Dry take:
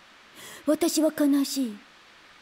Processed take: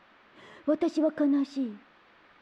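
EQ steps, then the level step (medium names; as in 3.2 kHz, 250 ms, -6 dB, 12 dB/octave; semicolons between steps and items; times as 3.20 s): tape spacing loss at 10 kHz 34 dB; bass shelf 180 Hz -6.5 dB; 0.0 dB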